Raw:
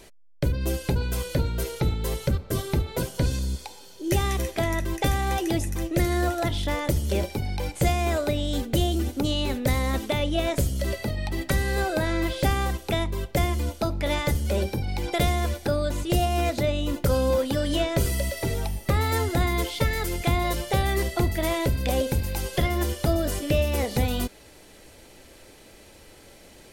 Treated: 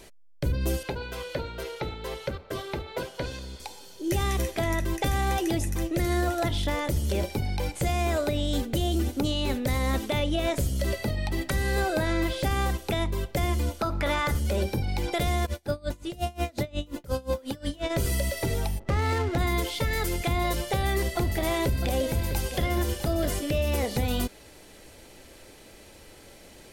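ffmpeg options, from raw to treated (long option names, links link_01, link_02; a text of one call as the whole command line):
ffmpeg -i in.wav -filter_complex "[0:a]asettb=1/sr,asplit=3[link_01][link_02][link_03];[link_01]atrim=end=0.834[link_04];[link_02]atrim=start=0.83:end=3.6,asetpts=PTS-STARTPTS,afade=type=in:duration=0.004:curve=qsin,afade=type=out:start_time=2.766:duration=0.004:curve=qsin,acrossover=split=380 4500:gain=0.224 1 0.2[link_05][link_06][link_07];[link_05][link_06][link_07]amix=inputs=3:normalize=0[link_08];[link_03]atrim=start=3.596[link_09];[link_04][link_08]acrossfade=duration=0.004:curve1=hsin:curve2=qsin[link_10];[link_10][link_09]acrossfade=duration=0.004:curve1=qsin:curve2=hsin,asettb=1/sr,asplit=3[link_11][link_12][link_13];[link_11]atrim=end=13.794[link_14];[link_12]atrim=start=13.79:end=14.39,asetpts=PTS-STARTPTS,afade=type=in:duration=0.004:curve=qsin,afade=type=out:start_time=0.596:duration=0.004:curve=qsin,equalizer=frequency=1300:width=1.5:gain=11[link_15];[link_13]atrim=start=14.386[link_16];[link_14][link_15]acrossfade=duration=0.004:curve1=hsin:curve2=qsin[link_17];[link_17][link_16]acrossfade=duration=0.004:curve1=qsin:curve2=hsin,asplit=3[link_18][link_19][link_20];[link_18]afade=type=out:start_time=15.45:duration=0.02[link_21];[link_19]aeval=exprs='val(0)*pow(10,-27*(0.5-0.5*cos(2*PI*5.6*n/s))/20)':channel_layout=same,afade=type=in:start_time=15.45:duration=0.02,afade=type=out:start_time=17.89:duration=0.02[link_22];[link_20]afade=type=in:start_time=17.89:duration=0.02[link_23];[link_21][link_22][link_23]amix=inputs=3:normalize=0,asplit=3[link_24][link_25][link_26];[link_24]afade=type=out:start_time=18.78:duration=0.02[link_27];[link_25]adynamicsmooth=sensitivity=7:basefreq=620,afade=type=in:start_time=18.78:duration=0.02,afade=type=out:start_time=19.37:duration=0.02[link_28];[link_26]afade=type=in:start_time=19.37:duration=0.02[link_29];[link_27][link_28][link_29]amix=inputs=3:normalize=0,asettb=1/sr,asplit=3[link_30][link_31][link_32];[link_30]atrim=end=20.504[link_33];[link_31]atrim=start=20.5:end=23.33,asetpts=PTS-STARTPTS,afade=type=in:duration=0.004:curve=qsin,afade=type=out:start_time=2.826:duration=0.004:curve=qsin,aecho=1:1:653:0.237,atrim=end_sample=124803[link_34];[link_32]atrim=start=23.326[link_35];[link_33][link_34]acrossfade=duration=0.004:curve1=hsin:curve2=qsin[link_36];[link_36][link_35]acrossfade=duration=0.004:curve1=qsin:curve2=hsin,alimiter=limit=-17dB:level=0:latency=1:release=75" out.wav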